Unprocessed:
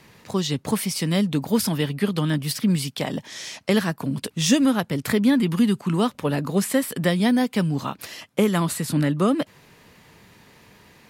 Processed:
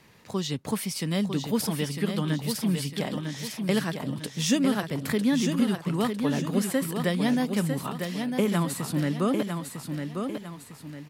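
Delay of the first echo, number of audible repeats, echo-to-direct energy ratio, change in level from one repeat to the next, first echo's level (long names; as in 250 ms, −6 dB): 952 ms, 3, −5.5 dB, −8.0 dB, −6.0 dB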